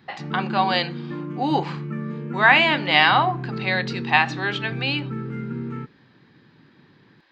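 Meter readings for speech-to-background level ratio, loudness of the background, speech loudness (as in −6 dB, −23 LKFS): 11.0 dB, −31.5 LKFS, −20.5 LKFS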